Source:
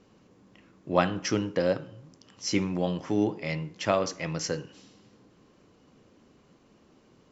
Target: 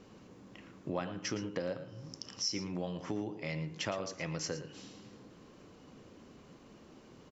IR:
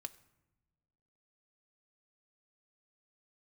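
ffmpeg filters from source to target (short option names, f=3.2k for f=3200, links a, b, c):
-filter_complex "[0:a]asettb=1/sr,asplit=3[a][b][c];[a]atrim=end=1.884[d];[b]atrim=start=1.88:end=2.61,asetpts=PTS-STARTPTS,afade=t=in:d=0.004:c=qsin,afade=t=out:st=0.726:d=0.004:c=qsin,equalizer=f=5.4k:w=4.1:g=14.5[e];[c]atrim=start=2.606[f];[d][e]acrossfade=d=0.004:c1=hsin:c2=qsin[g];[g][f]acrossfade=d=0.004:c1=qsin:c2=hsin,acompressor=threshold=-40dB:ratio=4,asplit=2[h][i];[i]aecho=0:1:114:0.224[j];[h][j]amix=inputs=2:normalize=0,volume=3.5dB"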